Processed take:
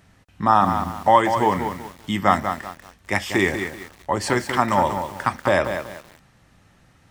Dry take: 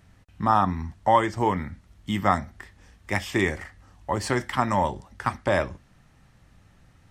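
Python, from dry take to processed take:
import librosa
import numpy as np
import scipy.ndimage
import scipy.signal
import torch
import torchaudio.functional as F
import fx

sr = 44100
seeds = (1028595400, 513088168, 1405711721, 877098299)

y = fx.low_shelf(x, sr, hz=100.0, db=-10.5)
y = fx.echo_crushed(y, sr, ms=191, feedback_pct=35, bits=7, wet_db=-7.5)
y = F.gain(torch.from_numpy(y), 4.5).numpy()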